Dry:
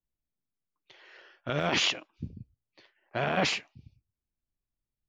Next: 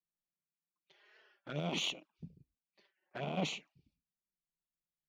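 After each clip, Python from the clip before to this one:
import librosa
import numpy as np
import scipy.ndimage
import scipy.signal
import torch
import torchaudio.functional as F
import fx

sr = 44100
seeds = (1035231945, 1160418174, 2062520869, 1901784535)

y = fx.env_flanger(x, sr, rest_ms=5.7, full_db=-27.0)
y = fx.cheby_harmonics(y, sr, harmonics=(3, 6), levels_db=(-22, -35), full_scale_db=-15.0)
y = fx.low_shelf_res(y, sr, hz=130.0, db=-6.5, q=3.0)
y = F.gain(torch.from_numpy(y), -6.5).numpy()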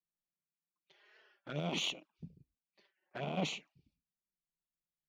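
y = x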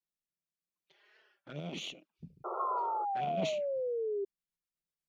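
y = fx.spec_paint(x, sr, seeds[0], shape='noise', start_s=2.44, length_s=0.61, low_hz=340.0, high_hz=1400.0, level_db=-38.0)
y = fx.rotary_switch(y, sr, hz=0.7, then_hz=8.0, switch_at_s=2.86)
y = fx.spec_paint(y, sr, seeds[1], shape='fall', start_s=2.59, length_s=1.66, low_hz=390.0, high_hz=1100.0, level_db=-34.0)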